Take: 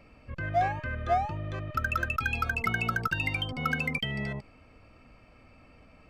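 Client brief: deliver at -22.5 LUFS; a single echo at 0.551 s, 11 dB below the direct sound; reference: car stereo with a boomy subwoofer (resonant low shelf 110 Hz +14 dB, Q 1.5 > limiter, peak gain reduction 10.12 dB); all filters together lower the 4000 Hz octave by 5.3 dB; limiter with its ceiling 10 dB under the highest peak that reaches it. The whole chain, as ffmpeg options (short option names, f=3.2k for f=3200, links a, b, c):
-af "equalizer=f=4k:t=o:g=-8,alimiter=level_in=1.5dB:limit=-24dB:level=0:latency=1,volume=-1.5dB,lowshelf=f=110:t=q:w=1.5:g=14,aecho=1:1:551:0.282,volume=10dB,alimiter=limit=-13dB:level=0:latency=1"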